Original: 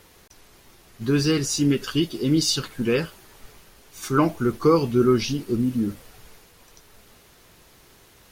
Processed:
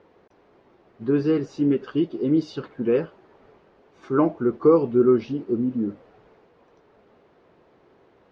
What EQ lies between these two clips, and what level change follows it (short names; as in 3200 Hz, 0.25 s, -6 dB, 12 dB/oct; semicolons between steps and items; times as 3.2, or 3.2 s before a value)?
band-pass 470 Hz, Q 0.87; air absorption 140 m; +3.0 dB